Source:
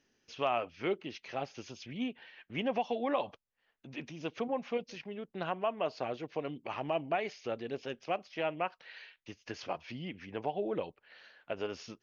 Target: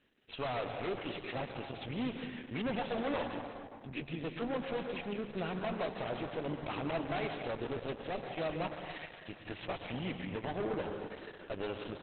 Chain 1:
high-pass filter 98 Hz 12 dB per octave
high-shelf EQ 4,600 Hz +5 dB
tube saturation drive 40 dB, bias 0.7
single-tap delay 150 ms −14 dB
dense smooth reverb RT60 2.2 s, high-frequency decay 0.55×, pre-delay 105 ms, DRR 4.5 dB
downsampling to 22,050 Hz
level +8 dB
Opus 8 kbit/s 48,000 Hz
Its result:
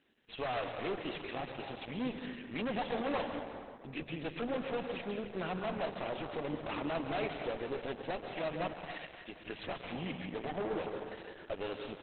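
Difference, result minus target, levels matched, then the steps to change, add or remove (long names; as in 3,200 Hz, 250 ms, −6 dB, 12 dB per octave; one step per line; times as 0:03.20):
125 Hz band −3.0 dB
remove: high-pass filter 98 Hz 12 dB per octave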